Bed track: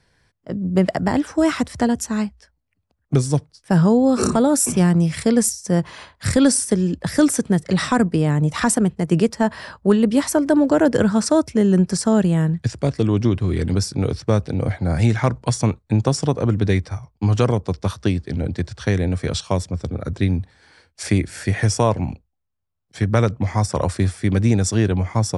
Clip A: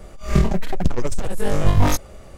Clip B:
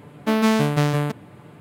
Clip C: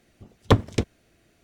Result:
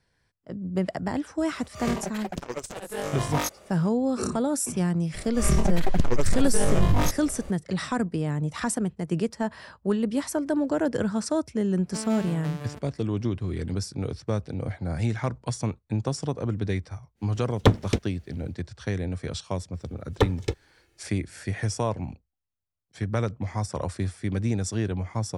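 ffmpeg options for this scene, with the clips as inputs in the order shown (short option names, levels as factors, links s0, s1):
-filter_complex "[1:a]asplit=2[s0][s1];[3:a]asplit=2[s2][s3];[0:a]volume=0.335[s4];[s0]highpass=f=460:p=1[s5];[s1]alimiter=level_in=3.55:limit=0.891:release=50:level=0:latency=1[s6];[s2]bandreject=f=1100:w=9.3[s7];[s3]aecho=1:1:2.3:0.96[s8];[s5]atrim=end=2.37,asetpts=PTS-STARTPTS,volume=0.631,afade=t=in:d=0.004:c=hsin,afade=t=out:st=2.366:d=0.004:c=hsin,adelay=1520[s9];[s6]atrim=end=2.37,asetpts=PTS-STARTPTS,volume=0.282,afade=t=in:d=0.004:c=hsin,afade=t=out:st=2.366:d=0.004:c=hsin,adelay=5140[s10];[2:a]atrim=end=1.6,asetpts=PTS-STARTPTS,volume=0.15,afade=t=in:d=0.004:c=hsin,afade=t=out:st=1.596:d=0.004:c=hsin,adelay=11670[s11];[s7]atrim=end=1.43,asetpts=PTS-STARTPTS,volume=0.944,afade=t=in:d=0.1,afade=t=out:st=1.33:d=0.1,adelay=17150[s12];[s8]atrim=end=1.43,asetpts=PTS-STARTPTS,volume=0.447,afade=t=in:d=0.05,afade=t=out:st=1.38:d=0.05,adelay=19700[s13];[s4][s9][s10][s11][s12][s13]amix=inputs=6:normalize=0"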